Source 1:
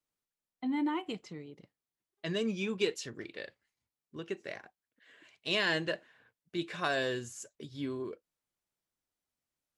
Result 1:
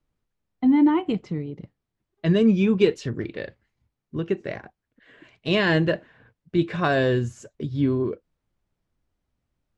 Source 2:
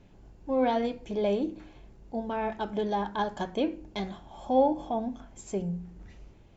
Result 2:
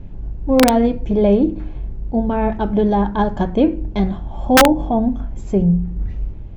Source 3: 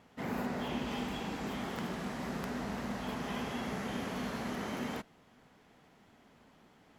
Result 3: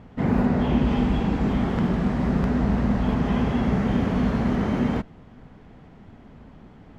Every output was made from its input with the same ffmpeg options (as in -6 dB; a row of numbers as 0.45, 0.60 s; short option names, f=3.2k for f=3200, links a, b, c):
-af "aemphasis=mode=reproduction:type=riaa,aeval=exprs='(mod(3.98*val(0)+1,2)-1)/3.98':c=same,volume=9dB"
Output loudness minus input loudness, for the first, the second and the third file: +12.5, +13.0, +15.0 LU